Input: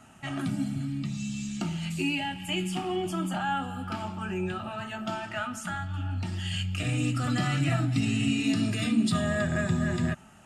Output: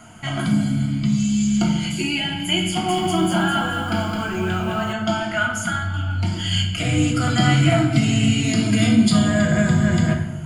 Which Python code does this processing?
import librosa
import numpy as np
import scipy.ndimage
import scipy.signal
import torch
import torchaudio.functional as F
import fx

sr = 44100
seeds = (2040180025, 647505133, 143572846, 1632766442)

y = fx.ripple_eq(x, sr, per_octave=1.8, db=12)
y = fx.room_shoebox(y, sr, seeds[0], volume_m3=430.0, walls='mixed', distance_m=0.92)
y = fx.echo_crushed(y, sr, ms=213, feedback_pct=35, bits=9, wet_db=-4, at=(2.67, 4.93))
y = y * librosa.db_to_amplitude(7.5)